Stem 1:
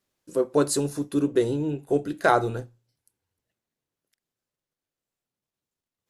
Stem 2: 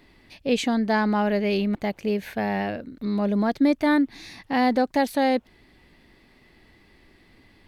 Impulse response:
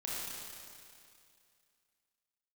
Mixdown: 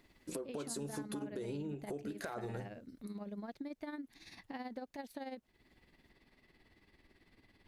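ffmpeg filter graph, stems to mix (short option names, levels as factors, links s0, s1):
-filter_complex "[0:a]acompressor=threshold=0.0251:ratio=6,alimiter=level_in=1.78:limit=0.0631:level=0:latency=1,volume=0.562,volume=1.12[s0];[1:a]acompressor=threshold=0.0158:ratio=2.5,tremolo=f=18:d=0.63,volume=0.376[s1];[s0][s1]amix=inputs=2:normalize=0,acompressor=threshold=0.0126:ratio=6"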